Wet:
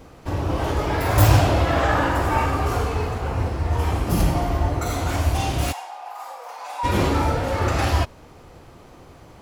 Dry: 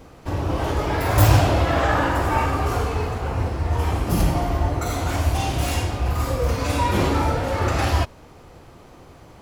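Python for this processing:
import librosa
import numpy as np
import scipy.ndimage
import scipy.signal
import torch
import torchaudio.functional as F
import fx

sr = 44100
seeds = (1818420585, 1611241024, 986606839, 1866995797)

y = fx.ladder_highpass(x, sr, hz=750.0, resonance_pct=75, at=(5.71, 6.83), fade=0.02)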